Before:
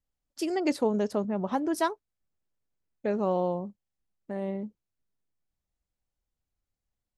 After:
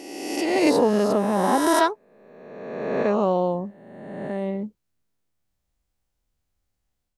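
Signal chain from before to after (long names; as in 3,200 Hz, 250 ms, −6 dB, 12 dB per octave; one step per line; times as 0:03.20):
peak hold with a rise ahead of every peak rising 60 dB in 1.58 s
automatic gain control gain up to 5 dB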